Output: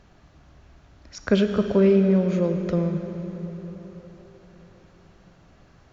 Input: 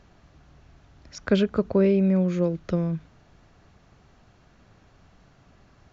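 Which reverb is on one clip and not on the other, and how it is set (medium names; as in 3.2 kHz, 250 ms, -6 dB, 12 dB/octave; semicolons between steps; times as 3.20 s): plate-style reverb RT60 4.6 s, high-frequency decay 0.8×, DRR 6 dB; trim +1 dB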